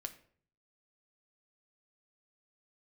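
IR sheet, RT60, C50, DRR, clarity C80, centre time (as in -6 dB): 0.55 s, 14.0 dB, 6.0 dB, 17.5 dB, 6 ms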